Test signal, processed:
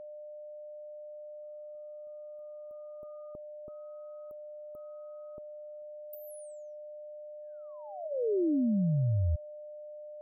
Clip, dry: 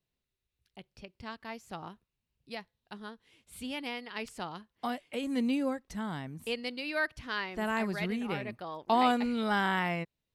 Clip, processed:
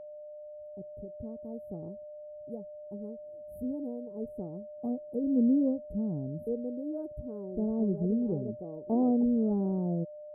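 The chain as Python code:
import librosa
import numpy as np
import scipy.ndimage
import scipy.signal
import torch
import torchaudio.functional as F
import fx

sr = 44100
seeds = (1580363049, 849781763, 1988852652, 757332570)

y = scipy.signal.sosfilt(scipy.signal.cheby2(4, 80, [1900.0, 5200.0], 'bandstop', fs=sr, output='sos'), x)
y = y + 10.0 ** (-48.0 / 20.0) * np.sin(2.0 * np.pi * 600.0 * np.arange(len(y)) / sr)
y = fx.env_lowpass_down(y, sr, base_hz=2400.0, full_db=-30.0)
y = y * librosa.db_to_amplitude(5.5)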